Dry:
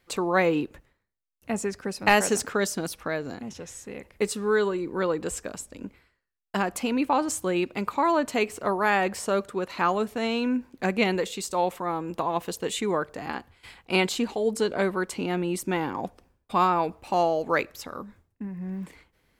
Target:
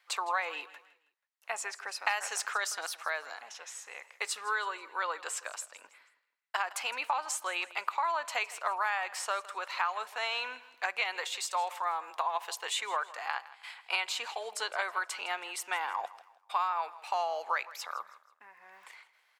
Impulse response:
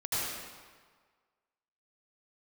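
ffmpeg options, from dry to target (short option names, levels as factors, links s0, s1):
-af "highpass=f=820:w=0.5412,highpass=f=820:w=1.3066,highshelf=f=7500:g=-9.5,acompressor=threshold=0.0316:ratio=6,aecho=1:1:161|322|483:0.126|0.0453|0.0163,volume=1.33"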